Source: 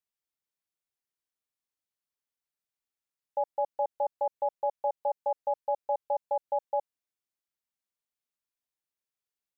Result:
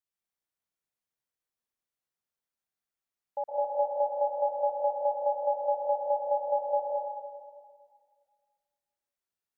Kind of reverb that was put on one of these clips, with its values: plate-style reverb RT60 1.9 s, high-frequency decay 0.3×, pre-delay 0.105 s, DRR -3.5 dB; gain -4 dB

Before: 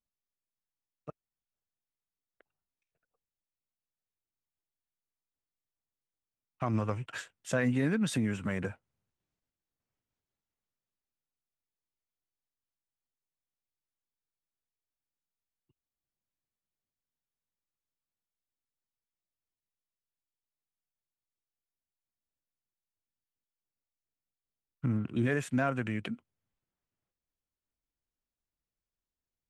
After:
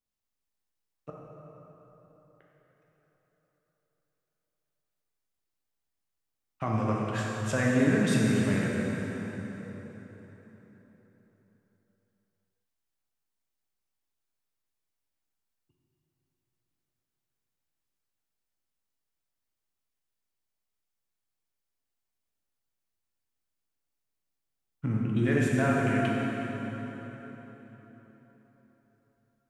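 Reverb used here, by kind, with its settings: plate-style reverb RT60 4.3 s, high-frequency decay 0.7×, DRR -4 dB

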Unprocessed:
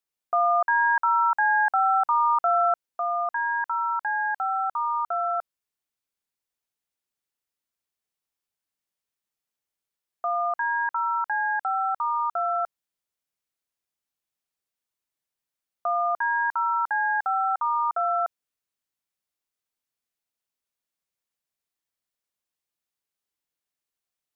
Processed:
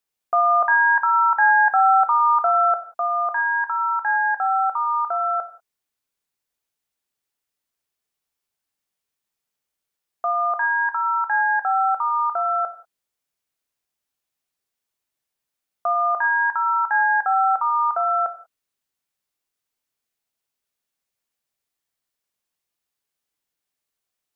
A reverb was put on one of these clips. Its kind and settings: non-linear reverb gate 0.21 s falling, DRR 8 dB; gain +4 dB

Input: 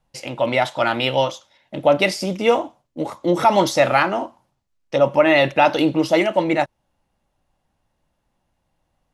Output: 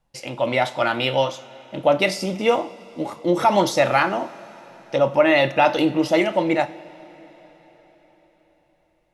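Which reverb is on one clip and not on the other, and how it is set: two-slope reverb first 0.38 s, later 4.8 s, from -18 dB, DRR 10.5 dB; gain -2 dB

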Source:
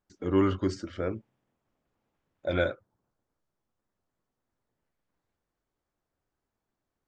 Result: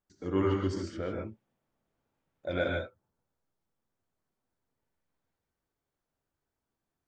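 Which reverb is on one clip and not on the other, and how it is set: non-linear reverb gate 0.17 s rising, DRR 0 dB; gain -5 dB

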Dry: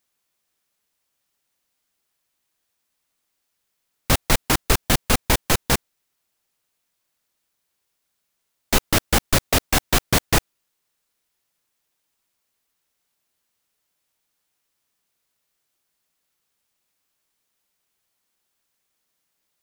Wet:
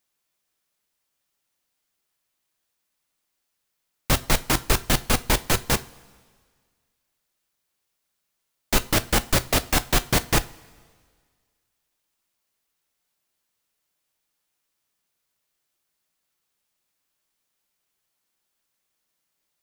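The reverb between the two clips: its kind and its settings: two-slope reverb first 0.28 s, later 1.8 s, from -18 dB, DRR 11 dB; gain -2.5 dB

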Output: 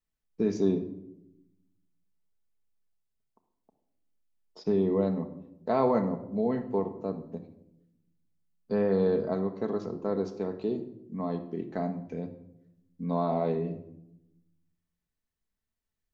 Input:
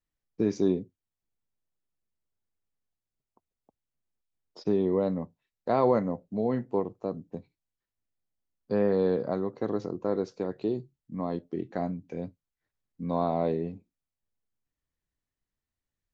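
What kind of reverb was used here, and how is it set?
shoebox room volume 2600 m³, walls furnished, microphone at 1.5 m; gain -2 dB

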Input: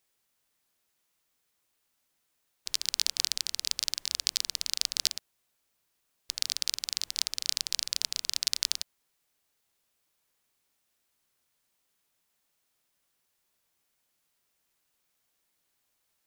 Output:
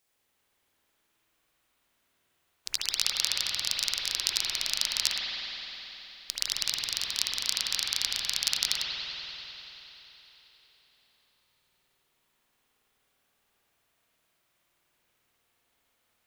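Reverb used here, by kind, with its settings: spring tank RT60 3.8 s, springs 52 ms, chirp 45 ms, DRR -6.5 dB

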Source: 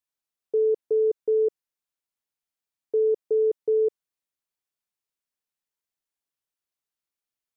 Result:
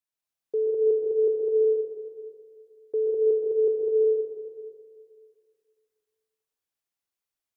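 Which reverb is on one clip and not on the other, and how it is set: plate-style reverb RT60 2.2 s, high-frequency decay 0.85×, pre-delay 0.11 s, DRR -2.5 dB; gain -3.5 dB

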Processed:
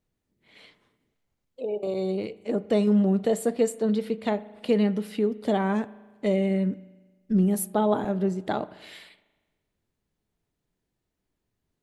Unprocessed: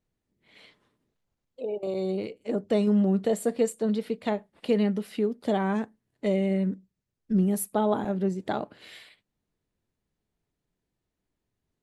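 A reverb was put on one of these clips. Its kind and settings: spring tank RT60 1.3 s, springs 38 ms, chirp 40 ms, DRR 17.5 dB; gain +1.5 dB

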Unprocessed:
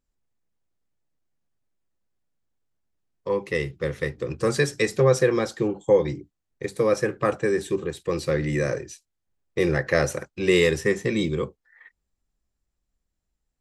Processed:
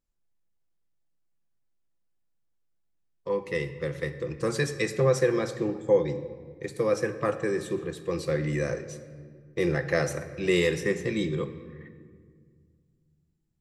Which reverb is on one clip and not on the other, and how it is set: shoebox room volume 3000 m³, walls mixed, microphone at 0.77 m; gain -5 dB

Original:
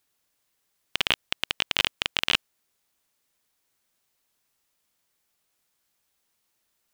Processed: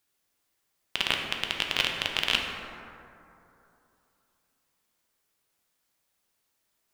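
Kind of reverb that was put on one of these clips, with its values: plate-style reverb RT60 2.9 s, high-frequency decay 0.35×, DRR 1 dB; gain -3 dB

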